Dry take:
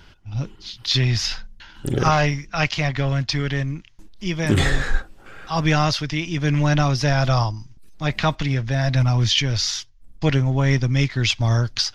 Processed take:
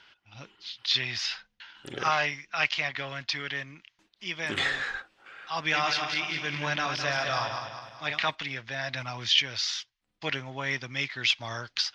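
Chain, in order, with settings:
0:05.63–0:08.31: feedback delay that plays each chunk backwards 103 ms, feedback 67%, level −5 dB
resonant band-pass 3,200 Hz, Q 0.91
high-shelf EQ 3,000 Hz −11 dB
level +3.5 dB

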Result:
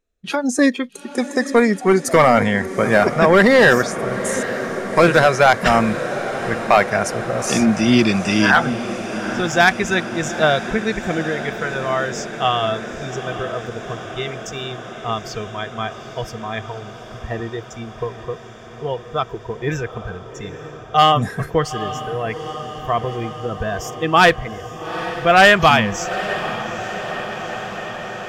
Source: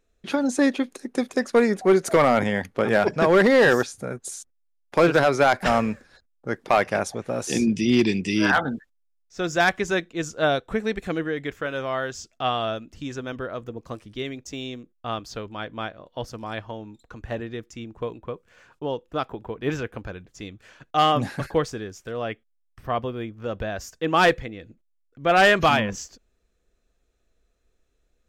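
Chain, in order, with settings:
noise reduction from a noise print of the clip's start 14 dB
feedback delay with all-pass diffusion 840 ms, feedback 75%, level −13 dB
dynamic equaliser 400 Hz, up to −5 dB, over −32 dBFS, Q 1.8
level +7 dB

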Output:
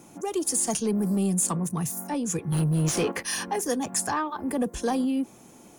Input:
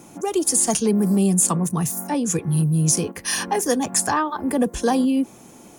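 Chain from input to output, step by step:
in parallel at −5.5 dB: soft clipping −19 dBFS, distortion −12 dB
0:02.52–0:03.23: on the sum: mid-hump overdrive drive 23 dB, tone 2,600 Hz, clips at −5.5 dBFS
level −9 dB

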